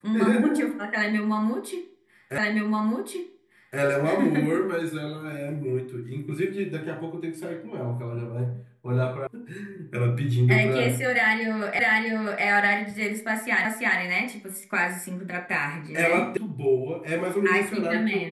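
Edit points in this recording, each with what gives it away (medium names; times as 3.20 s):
2.38 s: repeat of the last 1.42 s
9.27 s: sound stops dead
11.79 s: repeat of the last 0.65 s
13.65 s: repeat of the last 0.34 s
16.37 s: sound stops dead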